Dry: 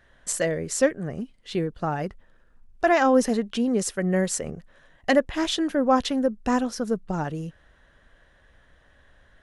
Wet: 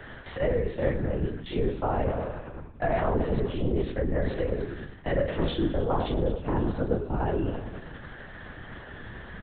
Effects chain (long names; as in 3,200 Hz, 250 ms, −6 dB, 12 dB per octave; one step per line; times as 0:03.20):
spectrum averaged block by block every 50 ms
double-tracking delay 28 ms −7.5 dB
in parallel at +2 dB: brickwall limiter −19.5 dBFS, peak gain reduction 11 dB
on the sum: echo with shifted repeats 103 ms, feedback 65%, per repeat −40 Hz, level −13.5 dB
reversed playback
downward compressor 4 to 1, threshold −28 dBFS, peak gain reduction 14 dB
reversed playback
dynamic equaliser 480 Hz, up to +5 dB, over −39 dBFS, Q 0.87
linear-prediction vocoder at 8 kHz whisper
multiband upward and downward compressor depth 40%